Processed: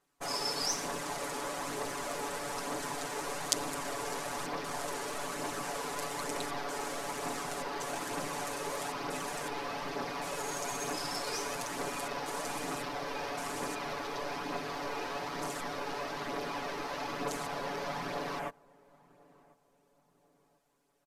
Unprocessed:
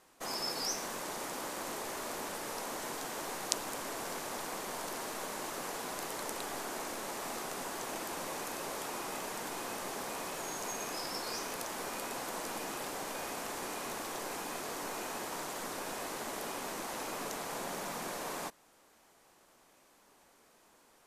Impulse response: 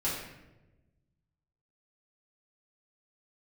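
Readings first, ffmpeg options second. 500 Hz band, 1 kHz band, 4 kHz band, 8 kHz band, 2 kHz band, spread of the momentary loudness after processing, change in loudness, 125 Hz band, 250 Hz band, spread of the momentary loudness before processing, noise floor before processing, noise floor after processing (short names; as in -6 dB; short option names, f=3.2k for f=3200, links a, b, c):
+3.0 dB, +3.0 dB, +2.0 dB, 0.0 dB, +2.5 dB, 3 LU, +2.0 dB, +6.0 dB, +3.0 dB, 3 LU, -65 dBFS, -70 dBFS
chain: -filter_complex "[0:a]afwtdn=0.00355,equalizer=f=90:t=o:w=2.2:g=2,aecho=1:1:7:0.92,aphaser=in_gain=1:out_gain=1:delay=2.5:decay=0.3:speed=1.1:type=triangular,asplit=2[a][b];[b]adelay=1044,lowpass=f=880:p=1,volume=-23dB,asplit=2[c][d];[d]adelay=1044,lowpass=f=880:p=1,volume=0.45,asplit=2[e][f];[f]adelay=1044,lowpass=f=880:p=1,volume=0.45[g];[c][e][g]amix=inputs=3:normalize=0[h];[a][h]amix=inputs=2:normalize=0"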